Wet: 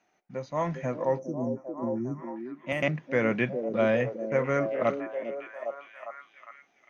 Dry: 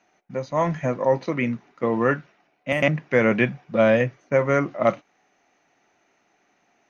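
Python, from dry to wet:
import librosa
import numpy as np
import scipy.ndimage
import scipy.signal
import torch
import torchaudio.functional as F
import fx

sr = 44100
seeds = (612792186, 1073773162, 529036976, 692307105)

y = fx.spec_erase(x, sr, start_s=1.19, length_s=1.17, low_hz=400.0, high_hz=5300.0)
y = fx.echo_stepped(y, sr, ms=404, hz=350.0, octaves=0.7, feedback_pct=70, wet_db=-3.5)
y = F.gain(torch.from_numpy(y), -7.0).numpy()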